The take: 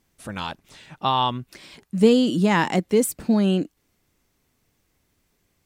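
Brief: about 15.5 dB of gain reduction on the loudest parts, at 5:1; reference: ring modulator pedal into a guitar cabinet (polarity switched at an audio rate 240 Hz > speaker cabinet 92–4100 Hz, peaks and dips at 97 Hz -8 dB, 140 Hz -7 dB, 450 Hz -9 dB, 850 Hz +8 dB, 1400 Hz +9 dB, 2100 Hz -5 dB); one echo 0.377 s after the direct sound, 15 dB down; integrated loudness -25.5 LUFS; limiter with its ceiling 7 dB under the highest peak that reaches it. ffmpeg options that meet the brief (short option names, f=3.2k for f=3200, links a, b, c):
-af "acompressor=threshold=-28dB:ratio=5,alimiter=limit=-23dB:level=0:latency=1,aecho=1:1:377:0.178,aeval=exprs='val(0)*sgn(sin(2*PI*240*n/s))':c=same,highpass=92,equalizer=f=97:t=q:w=4:g=-8,equalizer=f=140:t=q:w=4:g=-7,equalizer=f=450:t=q:w=4:g=-9,equalizer=f=850:t=q:w=4:g=8,equalizer=f=1.4k:t=q:w=4:g=9,equalizer=f=2.1k:t=q:w=4:g=-5,lowpass=f=4.1k:w=0.5412,lowpass=f=4.1k:w=1.3066,volume=8dB"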